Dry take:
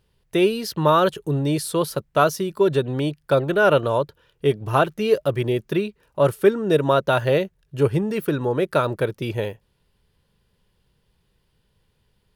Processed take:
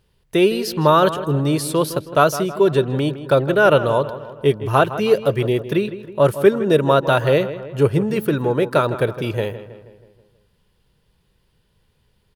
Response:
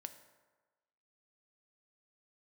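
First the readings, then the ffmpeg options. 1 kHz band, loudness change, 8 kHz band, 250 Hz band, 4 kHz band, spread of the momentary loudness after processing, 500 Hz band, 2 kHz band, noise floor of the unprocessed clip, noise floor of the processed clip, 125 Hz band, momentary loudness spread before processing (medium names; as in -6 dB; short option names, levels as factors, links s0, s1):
+3.0 dB, +3.0 dB, no reading, +3.0 dB, +3.0 dB, 8 LU, +3.0 dB, +3.0 dB, -68 dBFS, -64 dBFS, +3.5 dB, 8 LU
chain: -filter_complex "[0:a]asplit=2[s0][s1];[s1]adelay=160,lowpass=f=3000:p=1,volume=0.224,asplit=2[s2][s3];[s3]adelay=160,lowpass=f=3000:p=1,volume=0.54,asplit=2[s4][s5];[s5]adelay=160,lowpass=f=3000:p=1,volume=0.54,asplit=2[s6][s7];[s7]adelay=160,lowpass=f=3000:p=1,volume=0.54,asplit=2[s8][s9];[s9]adelay=160,lowpass=f=3000:p=1,volume=0.54,asplit=2[s10][s11];[s11]adelay=160,lowpass=f=3000:p=1,volume=0.54[s12];[s0][s2][s4][s6][s8][s10][s12]amix=inputs=7:normalize=0,volume=1.41"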